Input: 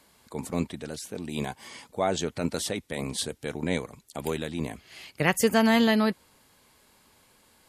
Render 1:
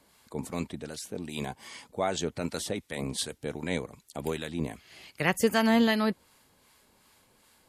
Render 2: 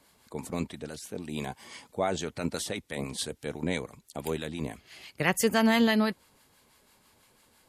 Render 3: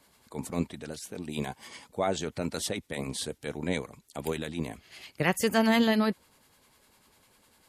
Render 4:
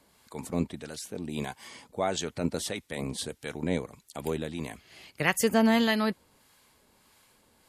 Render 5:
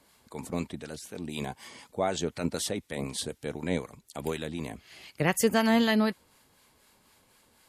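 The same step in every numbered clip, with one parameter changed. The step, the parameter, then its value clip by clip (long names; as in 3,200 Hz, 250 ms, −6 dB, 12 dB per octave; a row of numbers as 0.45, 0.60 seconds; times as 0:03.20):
two-band tremolo in antiphase, speed: 2.6, 6, 10, 1.6, 4 Hertz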